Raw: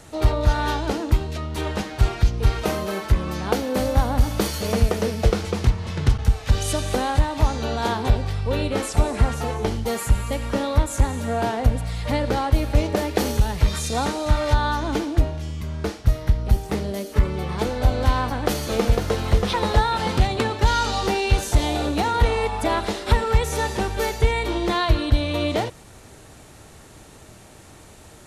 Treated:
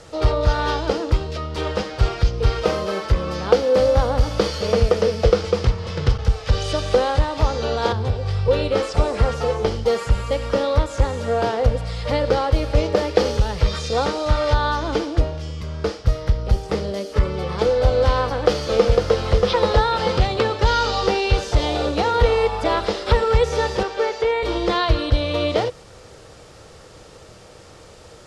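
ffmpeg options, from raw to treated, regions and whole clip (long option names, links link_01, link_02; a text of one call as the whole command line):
ffmpeg -i in.wav -filter_complex "[0:a]asettb=1/sr,asplit=3[link_01][link_02][link_03];[link_01]atrim=end=7.924[link_04];[link_02]atrim=start=7.92:end=8.48,asetpts=PTS-STARTPTS,afade=type=in:duration=0.004:curve=qsin,afade=type=out:start_time=0.556:duration=0.004:curve=qsin,equalizer=frequency=110:width_type=o:width=1.4:gain=12,acrossover=split=170|420[link_05][link_06][link_07];[link_05]acompressor=threshold=-21dB:ratio=4[link_08];[link_06]acompressor=threshold=-38dB:ratio=4[link_09];[link_07]acompressor=threshold=-34dB:ratio=4[link_10];[link_08][link_09][link_10]amix=inputs=3:normalize=0,asplit=2[link_11][link_12];[link_12]adelay=23,volume=-11dB[link_13];[link_11][link_13]amix=inputs=2:normalize=0,atrim=end_sample=24696[link_14];[link_03]atrim=start=8.476[link_15];[link_04][link_14]acrossfade=duration=0.004:curve1=hsin:curve2=qsin[link_16];[link_16][link_15]acrossfade=duration=0.004:curve1=qsin:curve2=hsin,asettb=1/sr,asplit=3[link_17][link_18][link_19];[link_17]atrim=end=23.834[link_20];[link_18]atrim=start=23.83:end=24.43,asetpts=PTS-STARTPTS,afade=type=in:duration=0.004:curve=qsin,afade=type=out:start_time=0.596:duration=0.004:curve=qsin,acrossover=split=2500[link_21][link_22];[link_22]acompressor=threshold=-37dB:ratio=4:attack=1:release=60[link_23];[link_21][link_23]amix=inputs=2:normalize=0,acrossover=split=270 7200:gain=0.0891 1 0.178[link_24][link_25][link_26];[link_24][link_25][link_26]amix=inputs=3:normalize=0[link_27];[link_19]atrim=start=24.426[link_28];[link_20][link_27]acrossfade=duration=0.004:curve1=hsin:curve2=qsin[link_29];[link_29][link_28]acrossfade=duration=0.004:curve1=qsin:curve2=hsin,lowpass=7600,acrossover=split=5800[link_30][link_31];[link_31]acompressor=threshold=-47dB:ratio=4:attack=1:release=60[link_32];[link_30][link_32]amix=inputs=2:normalize=0,equalizer=frequency=250:width_type=o:width=0.33:gain=-6,equalizer=frequency=500:width_type=o:width=0.33:gain=12,equalizer=frequency=1250:width_type=o:width=0.33:gain=5,equalizer=frequency=3150:width_type=o:width=0.33:gain=3,equalizer=frequency=5000:width_type=o:width=0.33:gain=8" out.wav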